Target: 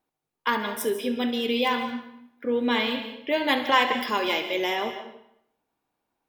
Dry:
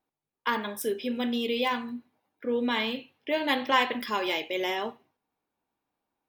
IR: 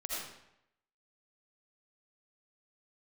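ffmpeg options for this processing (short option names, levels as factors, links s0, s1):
-filter_complex "[0:a]asplit=2[s0][s1];[1:a]atrim=start_sample=2205,asetrate=48510,aresample=44100,adelay=70[s2];[s1][s2]afir=irnorm=-1:irlink=0,volume=0.335[s3];[s0][s3]amix=inputs=2:normalize=0,volume=1.41"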